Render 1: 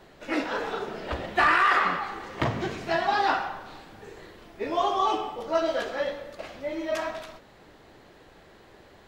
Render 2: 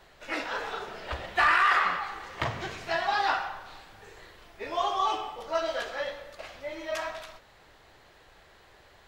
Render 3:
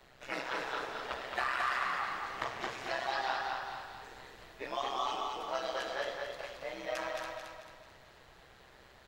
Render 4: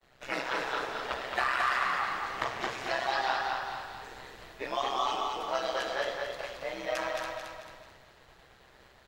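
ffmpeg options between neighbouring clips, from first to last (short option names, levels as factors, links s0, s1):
-af "equalizer=f=250:w=0.63:g=-12"
-filter_complex "[0:a]acrossover=split=300|1800|3800[s0][s1][s2][s3];[s0]acompressor=threshold=0.00178:ratio=4[s4];[s1]acompressor=threshold=0.0282:ratio=4[s5];[s2]acompressor=threshold=0.00794:ratio=4[s6];[s3]acompressor=threshold=0.00562:ratio=4[s7];[s4][s5][s6][s7]amix=inputs=4:normalize=0,tremolo=f=130:d=0.824,aecho=1:1:221|442|663|884|1105|1326:0.631|0.278|0.122|0.0537|0.0236|0.0104"
-af "agate=range=0.0224:threshold=0.00224:ratio=3:detection=peak,volume=1.68"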